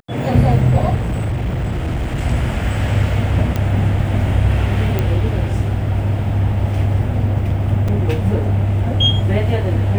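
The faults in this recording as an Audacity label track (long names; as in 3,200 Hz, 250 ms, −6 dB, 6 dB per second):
0.960000	2.220000	clipping −16 dBFS
3.560000	3.560000	click −7 dBFS
4.990000	4.990000	click −6 dBFS
7.880000	7.880000	drop-out 4.2 ms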